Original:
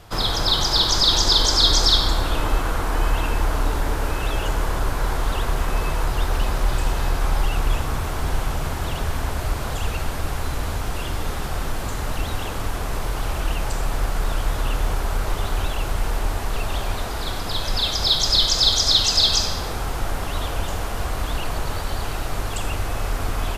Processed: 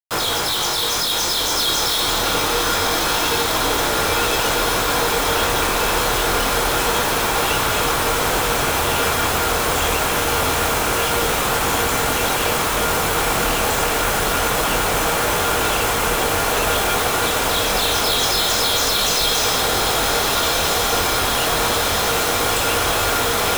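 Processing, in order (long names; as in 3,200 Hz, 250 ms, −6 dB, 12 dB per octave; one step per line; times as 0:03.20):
high-pass filter 330 Hz 6 dB per octave
parametric band 4,700 Hz −12.5 dB 0.21 octaves
fuzz pedal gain 40 dB, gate −40 dBFS
chorus effect 0.26 Hz, delay 18.5 ms, depth 6.4 ms
bit reduction 4 bits
tuned comb filter 470 Hz, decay 0.16 s, harmonics odd, mix 70%
on a send: feedback delay with all-pass diffusion 1,507 ms, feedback 74%, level −4.5 dB
on the sum: level +6 dB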